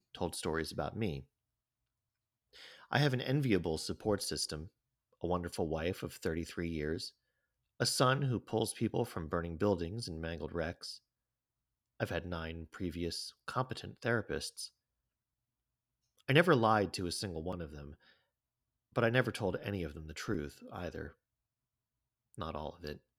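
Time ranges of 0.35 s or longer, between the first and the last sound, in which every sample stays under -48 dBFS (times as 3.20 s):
1.22–2.56 s
4.68–5.21 s
7.09–7.80 s
10.97–12.00 s
14.68–16.28 s
17.94–18.96 s
21.10–22.34 s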